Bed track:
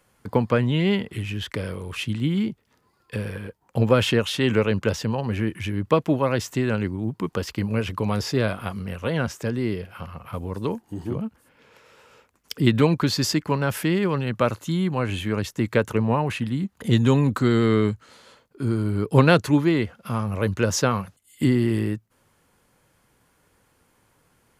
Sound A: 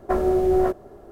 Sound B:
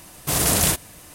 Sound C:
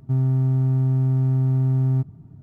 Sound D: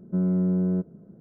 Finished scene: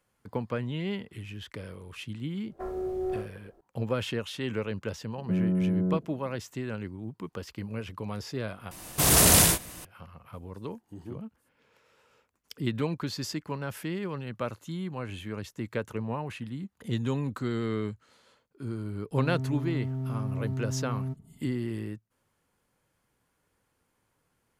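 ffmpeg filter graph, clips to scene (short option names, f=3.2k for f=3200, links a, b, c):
-filter_complex "[0:a]volume=-11.5dB[a];[1:a]aecho=1:1:24|56:0.631|0.473[b];[2:a]aecho=1:1:92|110:0.596|0.422[c];[3:a]aecho=1:1:4.6:0.56[d];[a]asplit=2[e][f];[e]atrim=end=8.714[g];[c]atrim=end=1.14,asetpts=PTS-STARTPTS,volume=-1dB[h];[f]atrim=start=9.846[i];[b]atrim=end=1.11,asetpts=PTS-STARTPTS,volume=-17.5dB,afade=t=in:d=0.004:c=hsin,afade=t=out:st=1.106:d=0.004:c=hsin,adelay=2500[j];[4:a]atrim=end=1.2,asetpts=PTS-STARTPTS,volume=-3dB,afade=t=in:d=0.004:c=hsin,afade=t=out:st=1.196:d=0.004:c=hsin,adelay=5160[k];[d]atrim=end=2.42,asetpts=PTS-STARTPTS,volume=-9.5dB,afade=t=in:d=0.004:c=hsin,afade=t=out:st=2.416:d=0.004:c=hsin,adelay=19110[l];[g][h]acrossfade=d=0.004:c1=hsin:c2=hsin[m];[m][i]acrossfade=d=0.004:c1=hsin:c2=hsin[n];[n][j][k][l]amix=inputs=4:normalize=0"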